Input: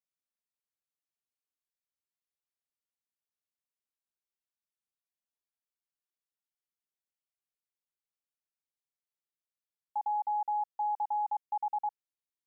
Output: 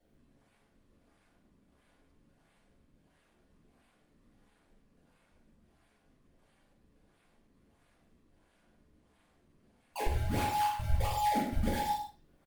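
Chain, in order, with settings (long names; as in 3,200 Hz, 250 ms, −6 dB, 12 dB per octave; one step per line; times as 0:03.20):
dynamic equaliser 530 Hz, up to −3 dB, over −51 dBFS, Q 1.8
compressor whose output falls as the input rises −40 dBFS, ratio −0.5
brickwall limiter −38 dBFS, peak gain reduction 3 dB
sample-and-hold swept by an LFO 34×, swing 160% 1.5 Hz
double-tracking delay 42 ms −3.5 dB
slap from a distant wall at 17 metres, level −7 dB
convolution reverb RT60 0.35 s, pre-delay 3 ms, DRR −11 dB
Opus 32 kbit/s 48,000 Hz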